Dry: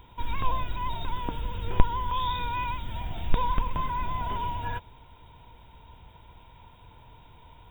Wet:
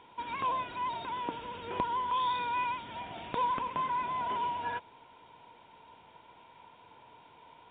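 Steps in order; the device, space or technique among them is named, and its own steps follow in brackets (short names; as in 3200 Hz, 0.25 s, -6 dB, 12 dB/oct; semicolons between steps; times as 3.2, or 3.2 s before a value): telephone (BPF 280–3500 Hz; soft clip -16 dBFS, distortion -24 dB; µ-law 64 kbps 8000 Hz)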